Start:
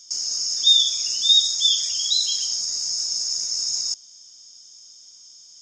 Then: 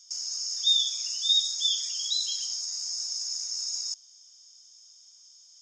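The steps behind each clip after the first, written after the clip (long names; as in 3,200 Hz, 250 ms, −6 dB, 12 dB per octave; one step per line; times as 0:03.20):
Butterworth high-pass 710 Hz 72 dB per octave
level −7.5 dB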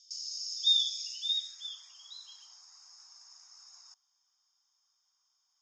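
floating-point word with a short mantissa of 4 bits
band-pass filter sweep 4,100 Hz → 1,100 Hz, 0:01.01–0:01.83
level −1 dB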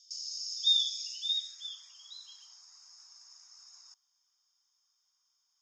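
high-pass filter 1,100 Hz 6 dB per octave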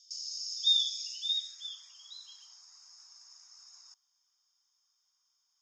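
no processing that can be heard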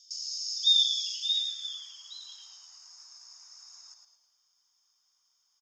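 echo with shifted repeats 108 ms, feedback 44%, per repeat −72 Hz, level −6 dB
level +3 dB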